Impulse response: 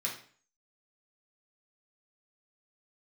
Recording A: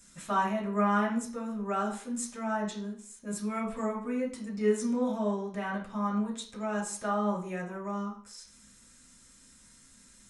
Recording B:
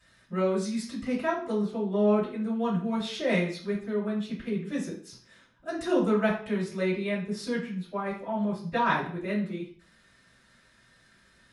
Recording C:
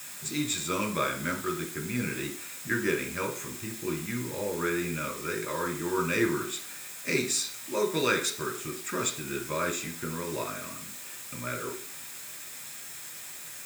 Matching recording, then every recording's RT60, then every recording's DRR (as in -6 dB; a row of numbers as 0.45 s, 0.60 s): A; 0.45 s, 0.45 s, 0.45 s; -4.5 dB, -12.0 dB, 2.0 dB